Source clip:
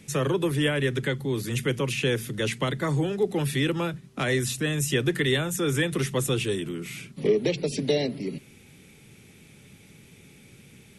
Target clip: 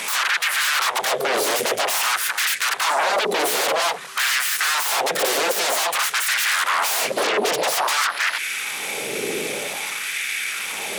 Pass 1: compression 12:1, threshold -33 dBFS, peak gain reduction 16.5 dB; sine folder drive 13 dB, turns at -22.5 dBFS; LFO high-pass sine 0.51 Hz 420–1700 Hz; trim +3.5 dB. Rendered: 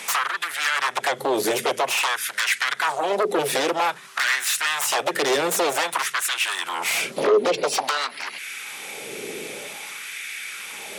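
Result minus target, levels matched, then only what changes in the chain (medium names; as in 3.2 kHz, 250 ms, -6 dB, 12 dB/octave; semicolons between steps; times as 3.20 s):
sine folder: distortion -20 dB
change: sine folder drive 22 dB, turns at -22.5 dBFS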